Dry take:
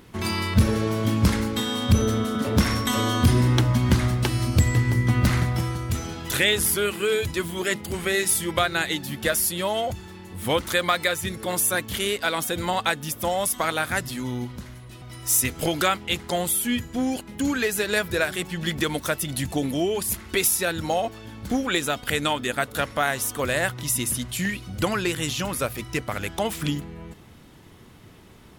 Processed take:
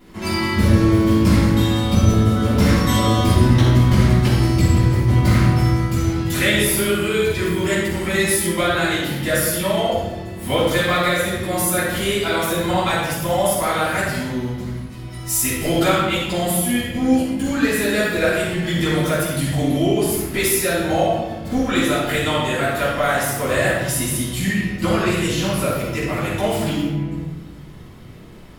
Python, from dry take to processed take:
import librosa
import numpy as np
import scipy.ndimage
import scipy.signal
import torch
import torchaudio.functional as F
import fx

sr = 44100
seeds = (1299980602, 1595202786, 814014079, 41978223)

p1 = 10.0 ** (-19.5 / 20.0) * np.tanh(x / 10.0 ** (-19.5 / 20.0))
p2 = x + (p1 * librosa.db_to_amplitude(-10.5))
p3 = fx.room_shoebox(p2, sr, seeds[0], volume_m3=650.0, walls='mixed', distance_m=9.5)
y = p3 * librosa.db_to_amplitude(-13.0)